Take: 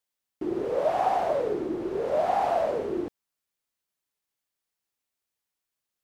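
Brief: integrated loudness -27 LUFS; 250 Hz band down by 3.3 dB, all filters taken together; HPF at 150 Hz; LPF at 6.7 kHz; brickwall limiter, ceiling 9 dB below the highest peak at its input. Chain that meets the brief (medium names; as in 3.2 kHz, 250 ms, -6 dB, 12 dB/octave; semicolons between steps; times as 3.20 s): high-pass 150 Hz; low-pass 6.7 kHz; peaking EQ 250 Hz -5 dB; trim +4 dB; peak limiter -18 dBFS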